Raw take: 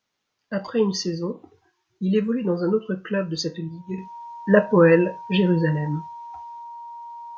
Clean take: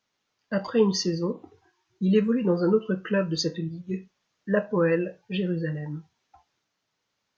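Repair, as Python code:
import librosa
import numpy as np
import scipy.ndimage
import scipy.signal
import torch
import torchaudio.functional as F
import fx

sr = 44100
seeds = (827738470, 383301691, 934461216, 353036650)

y = fx.notch(x, sr, hz=940.0, q=30.0)
y = fx.gain(y, sr, db=fx.steps((0.0, 0.0), (3.98, -8.0)))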